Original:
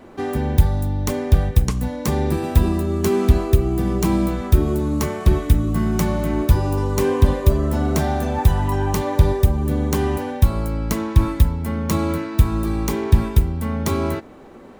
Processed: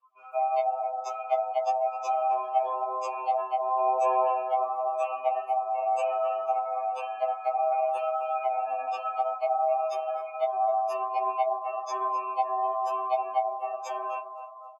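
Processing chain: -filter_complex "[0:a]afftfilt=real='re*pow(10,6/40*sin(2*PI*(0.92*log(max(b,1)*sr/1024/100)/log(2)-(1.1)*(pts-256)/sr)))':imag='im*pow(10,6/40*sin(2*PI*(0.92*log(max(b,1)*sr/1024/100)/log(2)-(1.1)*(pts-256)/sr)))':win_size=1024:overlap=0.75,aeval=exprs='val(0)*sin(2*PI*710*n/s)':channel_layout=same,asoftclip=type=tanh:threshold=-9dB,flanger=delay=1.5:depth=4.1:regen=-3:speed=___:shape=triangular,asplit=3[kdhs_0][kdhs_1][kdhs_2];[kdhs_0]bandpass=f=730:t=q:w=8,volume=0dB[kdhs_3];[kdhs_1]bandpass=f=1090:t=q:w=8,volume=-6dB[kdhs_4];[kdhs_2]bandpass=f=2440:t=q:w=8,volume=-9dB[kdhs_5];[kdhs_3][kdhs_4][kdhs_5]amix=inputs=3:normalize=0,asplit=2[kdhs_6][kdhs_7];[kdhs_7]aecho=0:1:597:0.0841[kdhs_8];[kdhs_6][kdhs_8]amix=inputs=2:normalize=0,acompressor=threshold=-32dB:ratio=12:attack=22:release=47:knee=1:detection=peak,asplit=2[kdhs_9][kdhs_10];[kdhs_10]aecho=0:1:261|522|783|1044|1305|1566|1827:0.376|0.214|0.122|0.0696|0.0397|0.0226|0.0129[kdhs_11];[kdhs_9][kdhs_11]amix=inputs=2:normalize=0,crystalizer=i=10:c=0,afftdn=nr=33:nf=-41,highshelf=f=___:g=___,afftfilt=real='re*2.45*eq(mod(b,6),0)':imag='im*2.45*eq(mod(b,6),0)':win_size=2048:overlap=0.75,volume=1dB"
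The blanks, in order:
0.99, 6100, 11.5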